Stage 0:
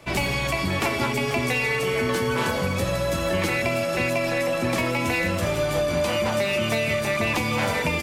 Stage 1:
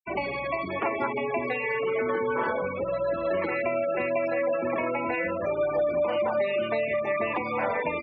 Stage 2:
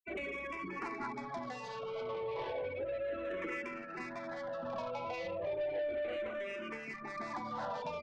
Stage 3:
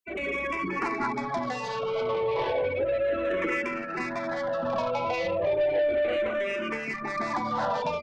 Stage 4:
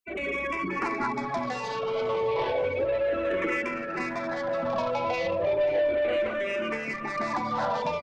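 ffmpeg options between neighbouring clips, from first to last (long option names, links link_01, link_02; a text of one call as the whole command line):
ffmpeg -i in.wav -filter_complex "[0:a]afftfilt=real='re*gte(hypot(re,im),0.0794)':imag='im*gte(hypot(re,im),0.0794)':win_size=1024:overlap=0.75,acrossover=split=290 2000:gain=0.126 1 0.2[link_01][link_02][link_03];[link_01][link_02][link_03]amix=inputs=3:normalize=0" out.wav
ffmpeg -i in.wav -filter_complex "[0:a]asoftclip=type=tanh:threshold=-26dB,asplit=2[link_01][link_02];[link_02]afreqshift=-0.33[link_03];[link_01][link_03]amix=inputs=2:normalize=1,volume=-5.5dB" out.wav
ffmpeg -i in.wav -af "dynaudnorm=framelen=150:gausssize=3:maxgain=6.5dB,volume=5dB" out.wav
ffmpeg -i in.wav -af "aecho=1:1:536|1072|1608|2144|2680:0.141|0.0791|0.0443|0.0248|0.0139" out.wav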